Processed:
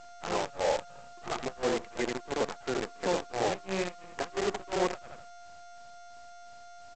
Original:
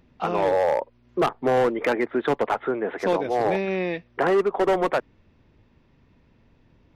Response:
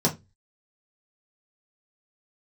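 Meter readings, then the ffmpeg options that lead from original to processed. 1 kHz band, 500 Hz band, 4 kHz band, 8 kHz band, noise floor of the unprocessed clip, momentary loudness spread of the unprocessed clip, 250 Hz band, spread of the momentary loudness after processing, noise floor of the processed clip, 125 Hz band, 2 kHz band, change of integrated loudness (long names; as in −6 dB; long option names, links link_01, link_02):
−9.5 dB, −10.0 dB, 0.0 dB, can't be measured, −60 dBFS, 6 LU, −9.5 dB, 20 LU, −49 dBFS, −8.5 dB, −8.0 dB, −9.0 dB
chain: -filter_complex "[0:a]asplit=2[link_01][link_02];[link_02]adelay=83,lowpass=frequency=4400:poles=1,volume=-5dB,asplit=2[link_03][link_04];[link_04]adelay=83,lowpass=frequency=4400:poles=1,volume=0.34,asplit=2[link_05][link_06];[link_06]adelay=83,lowpass=frequency=4400:poles=1,volume=0.34,asplit=2[link_07][link_08];[link_08]adelay=83,lowpass=frequency=4400:poles=1,volume=0.34[link_09];[link_01][link_03][link_05][link_07][link_09]amix=inputs=5:normalize=0,tremolo=f=2.9:d=0.99,aeval=exprs='val(0)+0.0141*sin(2*PI*700*n/s)':channel_layout=same,aresample=16000,acrusher=bits=5:dc=4:mix=0:aa=0.000001,aresample=44100,volume=-6.5dB"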